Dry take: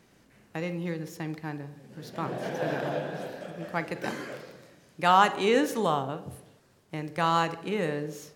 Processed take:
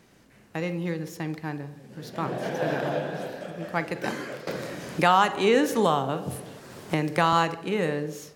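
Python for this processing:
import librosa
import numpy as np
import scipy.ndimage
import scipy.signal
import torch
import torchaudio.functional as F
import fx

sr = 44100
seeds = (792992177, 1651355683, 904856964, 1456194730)

y = fx.band_squash(x, sr, depth_pct=70, at=(4.47, 7.33))
y = y * librosa.db_to_amplitude(3.0)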